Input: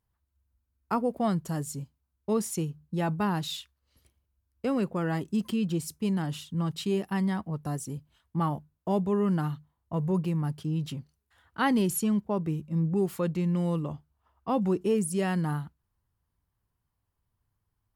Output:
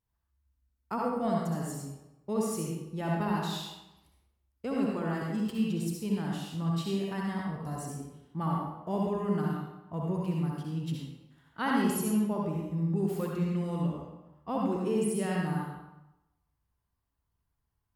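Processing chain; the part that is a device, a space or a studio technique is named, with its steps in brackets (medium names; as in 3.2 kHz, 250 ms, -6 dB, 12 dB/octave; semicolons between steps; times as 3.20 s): bathroom (reverberation RT60 0.95 s, pre-delay 56 ms, DRR -3 dB); trim -6.5 dB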